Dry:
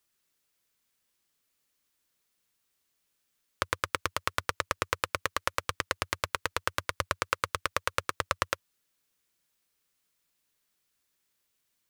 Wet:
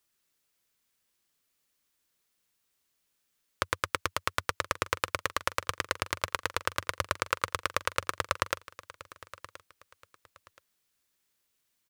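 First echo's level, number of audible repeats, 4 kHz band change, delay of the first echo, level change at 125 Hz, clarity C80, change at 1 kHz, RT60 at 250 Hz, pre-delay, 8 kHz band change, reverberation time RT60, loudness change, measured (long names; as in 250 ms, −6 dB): −17.5 dB, 2, 0.0 dB, 1,025 ms, 0.0 dB, no reverb audible, 0.0 dB, no reverb audible, no reverb audible, 0.0 dB, no reverb audible, 0.0 dB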